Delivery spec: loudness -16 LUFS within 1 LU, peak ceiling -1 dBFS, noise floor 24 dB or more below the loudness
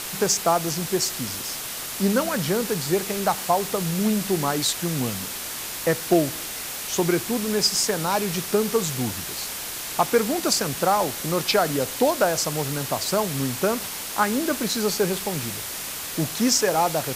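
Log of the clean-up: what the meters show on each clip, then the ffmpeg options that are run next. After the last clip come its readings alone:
noise floor -33 dBFS; noise floor target -48 dBFS; loudness -23.5 LUFS; peak level -8.0 dBFS; loudness target -16.0 LUFS
-> -af "afftdn=nr=15:nf=-33"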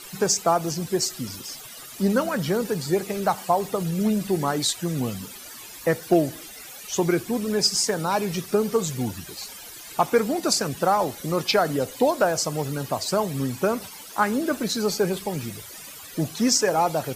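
noise floor -41 dBFS; noise floor target -48 dBFS
-> -af "afftdn=nr=7:nf=-41"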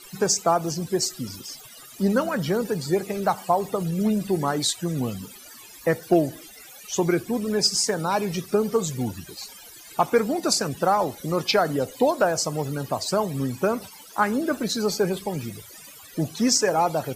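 noise floor -45 dBFS; noise floor target -48 dBFS
-> -af "afftdn=nr=6:nf=-45"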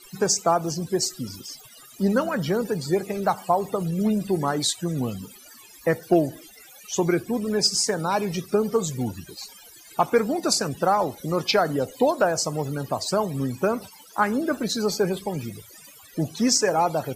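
noise floor -48 dBFS; noise floor target -49 dBFS; loudness -24.5 LUFS; peak level -8.5 dBFS; loudness target -16.0 LUFS
-> -af "volume=2.66,alimiter=limit=0.891:level=0:latency=1"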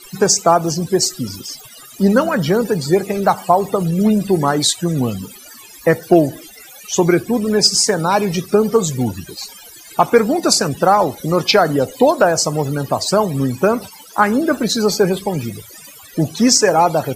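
loudness -16.0 LUFS; peak level -1.0 dBFS; noise floor -40 dBFS

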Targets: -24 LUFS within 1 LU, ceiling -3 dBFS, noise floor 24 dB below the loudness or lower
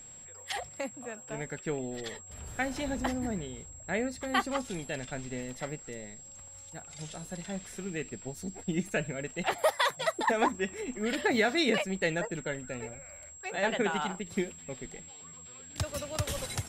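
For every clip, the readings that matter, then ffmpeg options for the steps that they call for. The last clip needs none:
steady tone 7.6 kHz; tone level -47 dBFS; loudness -33.5 LUFS; peak level -13.0 dBFS; loudness target -24.0 LUFS
-> -af "bandreject=f=7600:w=30"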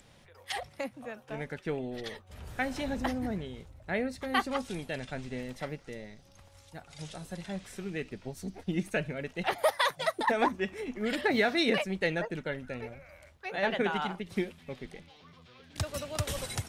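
steady tone not found; loudness -33.0 LUFS; peak level -13.0 dBFS; loudness target -24.0 LUFS
-> -af "volume=2.82"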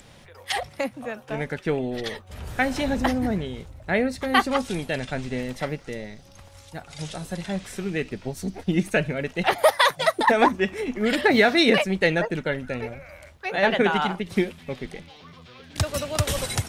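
loudness -24.0 LUFS; peak level -4.0 dBFS; noise floor -49 dBFS

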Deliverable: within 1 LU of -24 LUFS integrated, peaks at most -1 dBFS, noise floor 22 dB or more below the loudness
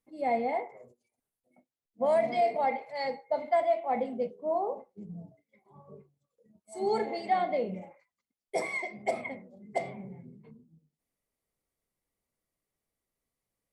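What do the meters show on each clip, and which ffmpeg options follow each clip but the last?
loudness -31.0 LUFS; peak level -16.5 dBFS; loudness target -24.0 LUFS
-> -af "volume=2.24"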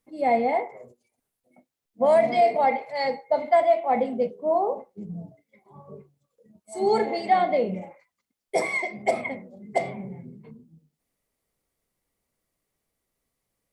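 loudness -24.0 LUFS; peak level -9.5 dBFS; noise floor -83 dBFS

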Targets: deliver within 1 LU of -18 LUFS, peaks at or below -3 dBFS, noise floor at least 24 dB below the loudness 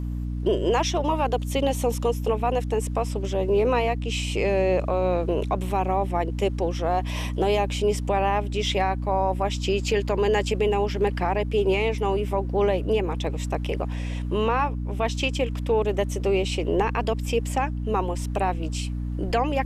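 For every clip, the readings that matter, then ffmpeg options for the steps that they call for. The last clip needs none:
hum 60 Hz; highest harmonic 300 Hz; hum level -26 dBFS; loudness -25.0 LUFS; peak level -11.5 dBFS; loudness target -18.0 LUFS
-> -af "bandreject=f=60:t=h:w=6,bandreject=f=120:t=h:w=6,bandreject=f=180:t=h:w=6,bandreject=f=240:t=h:w=6,bandreject=f=300:t=h:w=6"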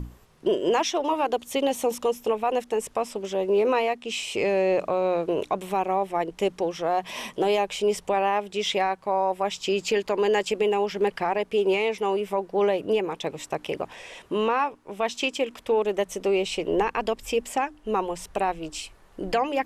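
hum not found; loudness -26.0 LUFS; peak level -13.5 dBFS; loudness target -18.0 LUFS
-> -af "volume=2.51"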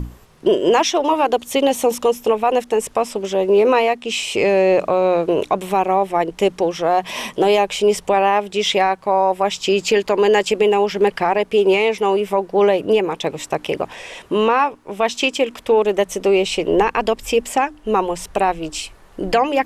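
loudness -18.0 LUFS; peak level -5.5 dBFS; noise floor -46 dBFS

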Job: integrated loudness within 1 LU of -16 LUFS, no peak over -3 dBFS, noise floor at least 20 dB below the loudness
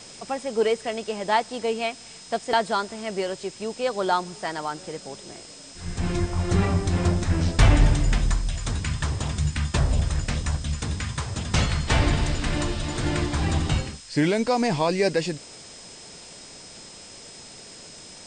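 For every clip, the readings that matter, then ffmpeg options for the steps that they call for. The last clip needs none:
steady tone 5.1 kHz; tone level -47 dBFS; noise floor -44 dBFS; noise floor target -46 dBFS; loudness -25.5 LUFS; peak level -8.0 dBFS; loudness target -16.0 LUFS
-> -af "bandreject=f=5100:w=30"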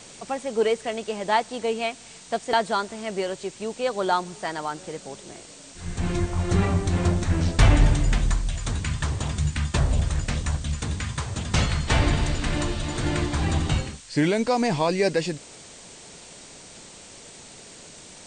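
steady tone not found; noise floor -45 dBFS; noise floor target -46 dBFS
-> -af "afftdn=nr=6:nf=-45"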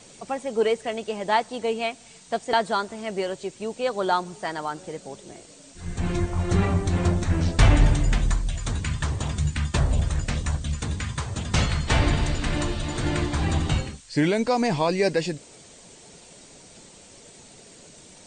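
noise floor -49 dBFS; loudness -25.5 LUFS; peak level -7.5 dBFS; loudness target -16.0 LUFS
-> -af "volume=2.99,alimiter=limit=0.708:level=0:latency=1"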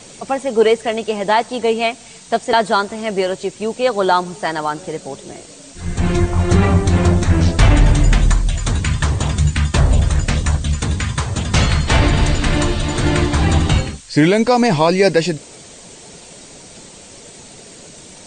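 loudness -16.5 LUFS; peak level -3.0 dBFS; noise floor -40 dBFS

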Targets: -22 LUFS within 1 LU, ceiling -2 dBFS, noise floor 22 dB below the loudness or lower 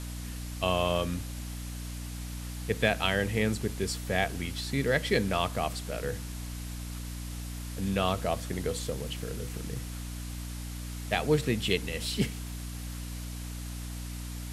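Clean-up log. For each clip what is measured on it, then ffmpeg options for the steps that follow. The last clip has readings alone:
hum 60 Hz; highest harmonic 300 Hz; hum level -36 dBFS; noise floor -39 dBFS; noise floor target -54 dBFS; loudness -32.0 LUFS; peak level -11.0 dBFS; loudness target -22.0 LUFS
-> -af "bandreject=f=60:t=h:w=4,bandreject=f=120:t=h:w=4,bandreject=f=180:t=h:w=4,bandreject=f=240:t=h:w=4,bandreject=f=300:t=h:w=4"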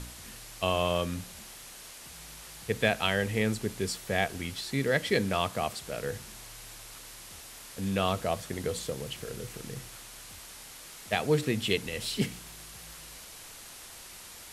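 hum not found; noise floor -47 dBFS; noise floor target -53 dBFS
-> -af "afftdn=nr=6:nf=-47"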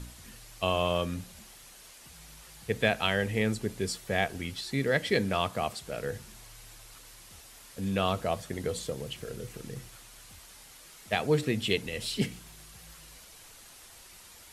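noise floor -52 dBFS; noise floor target -53 dBFS
-> -af "afftdn=nr=6:nf=-52"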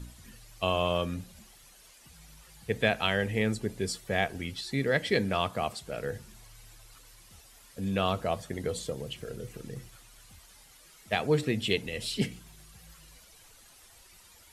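noise floor -56 dBFS; loudness -31.0 LUFS; peak level -11.5 dBFS; loudness target -22.0 LUFS
-> -af "volume=2.82"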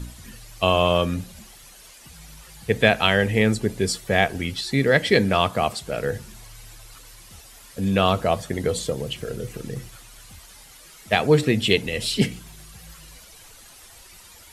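loudness -22.0 LUFS; peak level -2.5 dBFS; noise floor -47 dBFS

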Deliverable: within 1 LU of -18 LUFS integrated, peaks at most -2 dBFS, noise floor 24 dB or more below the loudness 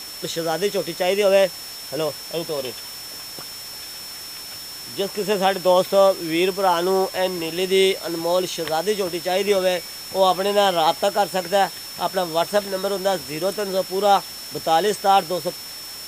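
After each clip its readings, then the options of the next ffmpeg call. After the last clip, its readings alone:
steady tone 5.4 kHz; tone level -35 dBFS; noise floor -35 dBFS; noise floor target -45 dBFS; loudness -21.0 LUFS; peak level -3.5 dBFS; loudness target -18.0 LUFS
-> -af "bandreject=f=5400:w=30"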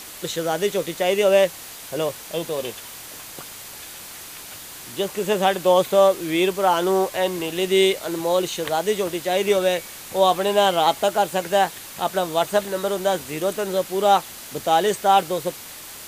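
steady tone not found; noise floor -39 dBFS; noise floor target -45 dBFS
-> -af "afftdn=nr=6:nf=-39"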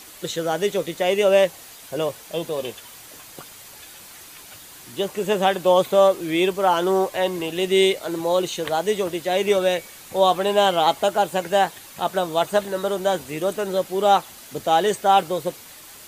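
noise floor -43 dBFS; noise floor target -46 dBFS
-> -af "afftdn=nr=6:nf=-43"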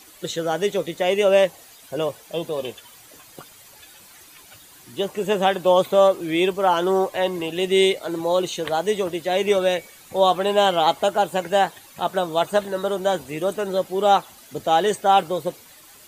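noise floor -48 dBFS; loudness -21.5 LUFS; peak level -4.5 dBFS; loudness target -18.0 LUFS
-> -af "volume=1.5,alimiter=limit=0.794:level=0:latency=1"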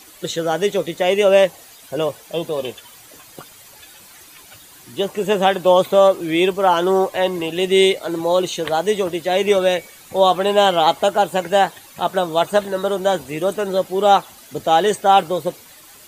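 loudness -18.0 LUFS; peak level -2.0 dBFS; noise floor -44 dBFS

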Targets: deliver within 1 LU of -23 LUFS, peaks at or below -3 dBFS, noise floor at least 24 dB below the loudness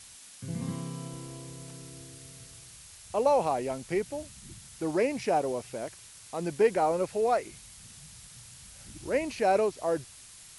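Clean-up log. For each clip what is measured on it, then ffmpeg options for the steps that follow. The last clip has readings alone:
noise floor -51 dBFS; noise floor target -54 dBFS; loudness -30.0 LUFS; peak level -12.0 dBFS; loudness target -23.0 LUFS
-> -af "afftdn=nr=6:nf=-51"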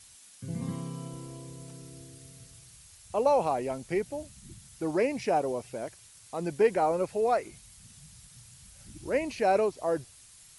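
noise floor -55 dBFS; loudness -29.5 LUFS; peak level -12.0 dBFS; loudness target -23.0 LUFS
-> -af "volume=2.11"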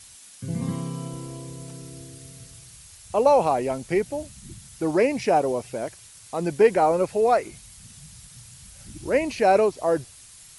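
loudness -23.5 LUFS; peak level -5.5 dBFS; noise floor -48 dBFS

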